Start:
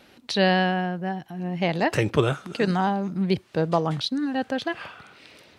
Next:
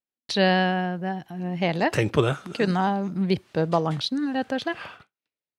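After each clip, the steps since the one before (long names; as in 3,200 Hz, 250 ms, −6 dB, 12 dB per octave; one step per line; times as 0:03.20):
noise gate −43 dBFS, range −47 dB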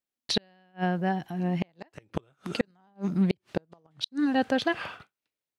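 gate with flip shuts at −14 dBFS, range −41 dB
level +1.5 dB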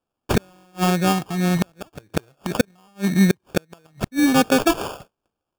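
sample-rate reduction 2,000 Hz, jitter 0%
level +8.5 dB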